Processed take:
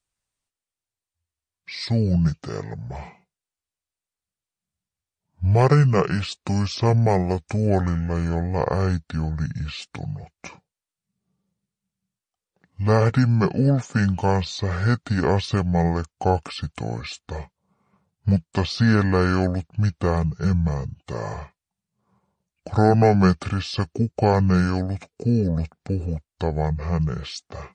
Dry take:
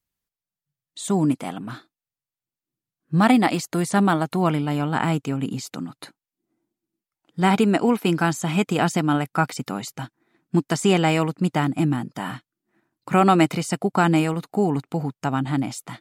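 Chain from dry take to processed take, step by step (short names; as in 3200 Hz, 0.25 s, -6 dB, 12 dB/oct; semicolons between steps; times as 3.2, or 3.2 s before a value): speed mistake 78 rpm record played at 45 rpm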